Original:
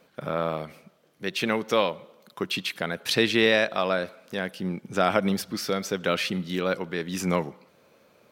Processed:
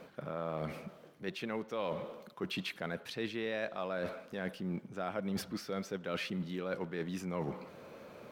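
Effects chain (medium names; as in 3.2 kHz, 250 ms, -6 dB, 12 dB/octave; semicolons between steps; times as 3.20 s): companding laws mixed up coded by mu; treble shelf 2.9 kHz -10 dB; reverse; compression 6:1, threshold -36 dBFS, peak gain reduction 18 dB; reverse; trim +1 dB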